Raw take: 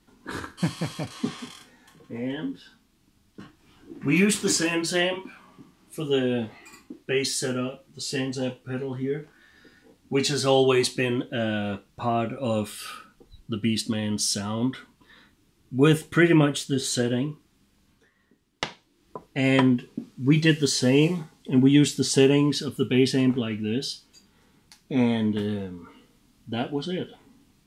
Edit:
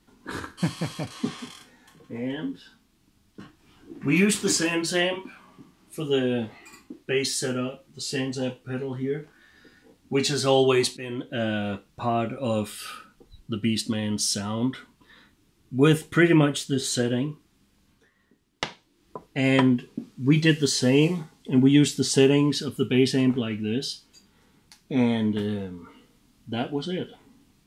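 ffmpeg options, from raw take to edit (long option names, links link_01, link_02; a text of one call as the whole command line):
ffmpeg -i in.wav -filter_complex "[0:a]asplit=2[link_01][link_02];[link_01]atrim=end=10.97,asetpts=PTS-STARTPTS,afade=type=out:start_time=10.966:duration=0.004:curve=hsin:silence=0.177828[link_03];[link_02]atrim=start=10.97,asetpts=PTS-STARTPTS,afade=type=in:duration=0.45:silence=0.177828[link_04];[link_03][link_04]concat=n=2:v=0:a=1" out.wav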